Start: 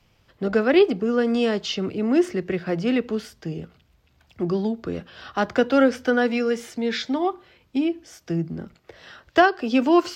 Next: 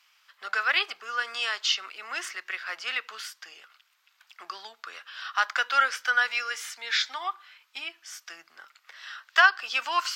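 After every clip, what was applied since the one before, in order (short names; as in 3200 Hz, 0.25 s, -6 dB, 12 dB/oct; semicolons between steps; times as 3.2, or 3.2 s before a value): Chebyshev high-pass 1200 Hz, order 3; gain +4.5 dB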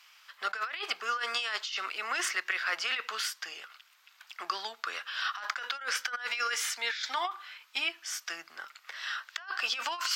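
negative-ratio compressor -34 dBFS, ratio -1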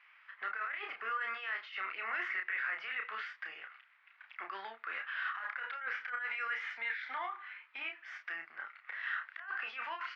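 limiter -26 dBFS, peak gain reduction 10 dB; ladder low-pass 2300 Hz, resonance 55%; doubler 31 ms -5 dB; gain +3 dB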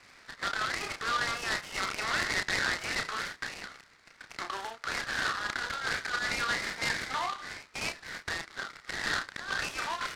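noise-modulated delay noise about 2300 Hz, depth 0.057 ms; gain +6.5 dB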